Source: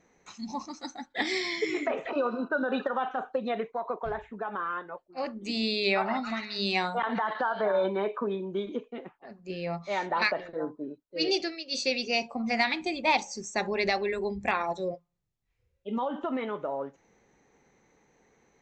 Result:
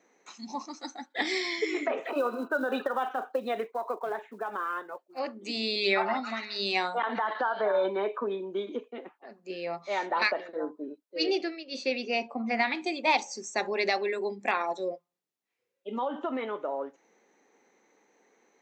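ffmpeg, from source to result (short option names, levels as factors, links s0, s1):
-filter_complex "[0:a]asettb=1/sr,asplit=3[s0][s1][s2];[s0]atrim=end=2.024[s3];[s1]atrim=start=2.02:end=5.19,asetpts=PTS-STARTPTS,afade=t=in:d=0.004:c=qsin,afade=t=out:st=3.166:d=0.004:c=qsin,acrusher=bits=8:mode=log:mix=0:aa=0.000001[s4];[s2]atrim=start=5.186[s5];[s3][s4]acrossfade=d=0.004:c1=hsin:c2=qsin[s6];[s6][s5]acrossfade=d=0.004:c1=qsin:c2=hsin,asettb=1/sr,asplit=3[s7][s8][s9];[s7]atrim=end=5.754[s10];[s8]atrim=start=5.75:end=6.15,asetpts=PTS-STARTPTS,afade=t=in:d=0.004:c=qsin,afade=t=out:st=0.396:d=0.004:c=qsin,aecho=1:1:5.7:0.65,atrim=end_sample=17640[s11];[s9]atrim=start=6.146[s12];[s10][s11]acrossfade=d=0.004:c1=hsin:c2=qsin[s13];[s13][s12]acrossfade=d=0.004:c1=qsin:c2=hsin,asettb=1/sr,asplit=3[s14][s15][s16];[s14]atrim=end=11.264[s17];[s15]atrim=start=11.26:end=12.75,asetpts=PTS-STARTPTS,afade=t=in:d=0.004:c=qsin,afade=t=out:st=1.486:d=0.004:c=qsin,bass=f=250:g=6,treble=f=4000:g=-13[s18];[s16]atrim=start=12.746[s19];[s17][s18]acrossfade=d=0.004:c1=hsin:c2=qsin[s20];[s20][s19]acrossfade=d=0.004:c1=qsin:c2=hsin,highpass=f=250:w=0.5412,highpass=f=250:w=1.3066"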